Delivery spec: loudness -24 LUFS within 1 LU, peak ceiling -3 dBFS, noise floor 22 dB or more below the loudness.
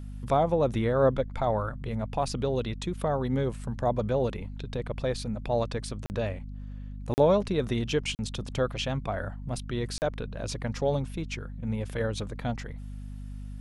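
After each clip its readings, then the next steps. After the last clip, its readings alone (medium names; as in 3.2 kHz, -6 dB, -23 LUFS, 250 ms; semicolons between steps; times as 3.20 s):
dropouts 4; longest dropout 39 ms; hum 50 Hz; highest harmonic 250 Hz; hum level -36 dBFS; loudness -29.5 LUFS; peak level -11.5 dBFS; loudness target -24.0 LUFS
-> interpolate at 6.06/7.14/8.15/9.98 s, 39 ms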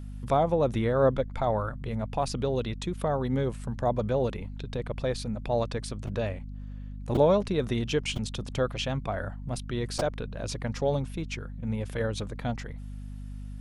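dropouts 0; hum 50 Hz; highest harmonic 250 Hz; hum level -36 dBFS
-> de-hum 50 Hz, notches 5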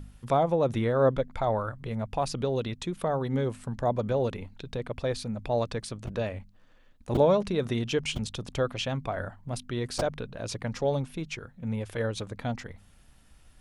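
hum not found; loudness -30.0 LUFS; peak level -11.0 dBFS; loudness target -24.0 LUFS
-> trim +6 dB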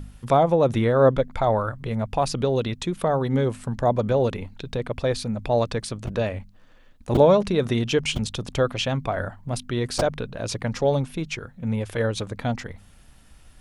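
loudness -24.0 LUFS; peak level -5.0 dBFS; noise floor -51 dBFS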